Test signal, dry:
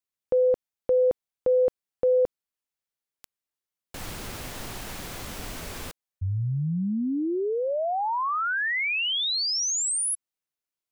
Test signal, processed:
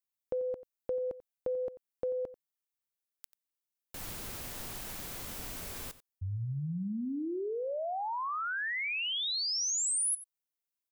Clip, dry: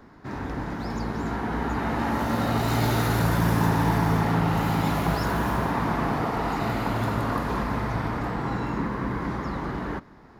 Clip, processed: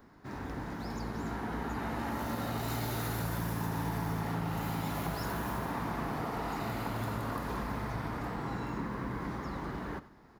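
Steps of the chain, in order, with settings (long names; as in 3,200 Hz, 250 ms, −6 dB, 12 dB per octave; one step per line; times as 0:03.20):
high-shelf EQ 11,000 Hz +7.5 dB
downward compressor, threshold −23 dBFS
high-shelf EQ 5,300 Hz +3.5 dB
single-tap delay 90 ms −16.5 dB
level −8 dB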